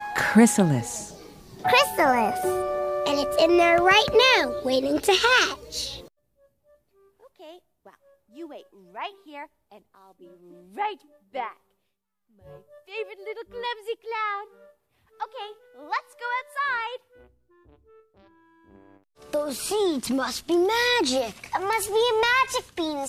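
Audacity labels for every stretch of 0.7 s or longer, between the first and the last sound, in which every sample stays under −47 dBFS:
6.080000	7.220000	silence
11.570000	12.430000	silence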